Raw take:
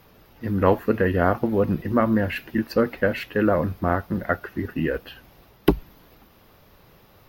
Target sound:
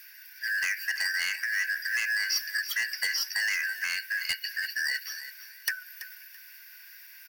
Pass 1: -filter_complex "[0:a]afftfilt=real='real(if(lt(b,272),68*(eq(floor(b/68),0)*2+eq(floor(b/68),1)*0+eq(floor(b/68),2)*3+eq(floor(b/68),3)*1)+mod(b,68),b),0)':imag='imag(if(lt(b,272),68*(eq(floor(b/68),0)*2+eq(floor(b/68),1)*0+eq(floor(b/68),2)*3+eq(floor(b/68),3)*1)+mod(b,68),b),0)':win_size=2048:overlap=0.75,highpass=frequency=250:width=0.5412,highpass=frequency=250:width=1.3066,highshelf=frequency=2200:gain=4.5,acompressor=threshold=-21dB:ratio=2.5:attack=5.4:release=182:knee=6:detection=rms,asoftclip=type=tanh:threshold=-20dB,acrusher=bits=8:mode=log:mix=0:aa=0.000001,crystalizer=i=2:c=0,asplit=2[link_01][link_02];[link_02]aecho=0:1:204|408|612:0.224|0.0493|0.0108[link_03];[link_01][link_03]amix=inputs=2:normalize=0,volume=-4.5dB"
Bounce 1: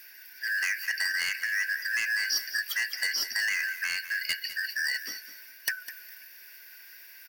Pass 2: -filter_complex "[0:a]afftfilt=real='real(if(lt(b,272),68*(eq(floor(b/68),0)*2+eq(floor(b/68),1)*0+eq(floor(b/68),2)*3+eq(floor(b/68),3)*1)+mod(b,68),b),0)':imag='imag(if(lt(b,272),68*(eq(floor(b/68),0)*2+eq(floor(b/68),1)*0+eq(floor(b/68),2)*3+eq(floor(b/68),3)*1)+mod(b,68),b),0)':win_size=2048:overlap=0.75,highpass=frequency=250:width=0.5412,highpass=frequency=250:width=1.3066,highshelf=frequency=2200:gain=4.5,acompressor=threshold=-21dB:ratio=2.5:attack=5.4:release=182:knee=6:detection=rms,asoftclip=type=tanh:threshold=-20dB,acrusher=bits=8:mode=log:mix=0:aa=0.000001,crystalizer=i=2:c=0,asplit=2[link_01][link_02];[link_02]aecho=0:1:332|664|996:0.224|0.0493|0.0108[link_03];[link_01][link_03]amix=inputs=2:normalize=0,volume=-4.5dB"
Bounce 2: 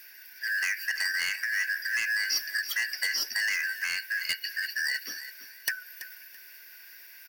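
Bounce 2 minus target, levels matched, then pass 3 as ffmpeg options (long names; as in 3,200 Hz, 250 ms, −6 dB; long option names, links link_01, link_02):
250 Hz band +7.5 dB
-filter_complex "[0:a]afftfilt=real='real(if(lt(b,272),68*(eq(floor(b/68),0)*2+eq(floor(b/68),1)*0+eq(floor(b/68),2)*3+eq(floor(b/68),3)*1)+mod(b,68),b),0)':imag='imag(if(lt(b,272),68*(eq(floor(b/68),0)*2+eq(floor(b/68),1)*0+eq(floor(b/68),2)*3+eq(floor(b/68),3)*1)+mod(b,68),b),0)':win_size=2048:overlap=0.75,highpass=frequency=900:width=0.5412,highpass=frequency=900:width=1.3066,highshelf=frequency=2200:gain=4.5,acompressor=threshold=-21dB:ratio=2.5:attack=5.4:release=182:knee=6:detection=rms,asoftclip=type=tanh:threshold=-20dB,acrusher=bits=8:mode=log:mix=0:aa=0.000001,crystalizer=i=2:c=0,asplit=2[link_01][link_02];[link_02]aecho=0:1:332|664|996:0.224|0.0493|0.0108[link_03];[link_01][link_03]amix=inputs=2:normalize=0,volume=-4.5dB"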